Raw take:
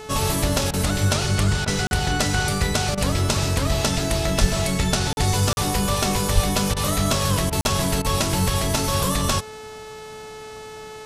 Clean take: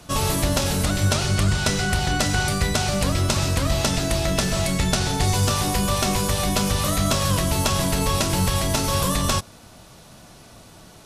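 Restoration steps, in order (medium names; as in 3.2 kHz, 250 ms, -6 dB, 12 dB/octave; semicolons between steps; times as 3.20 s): de-hum 433.1 Hz, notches 20; de-plosive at 4.40/6.34 s; interpolate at 1.87/5.13/5.53/7.61 s, 41 ms; interpolate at 0.71/1.65/2.95/6.74/7.50/8.02 s, 24 ms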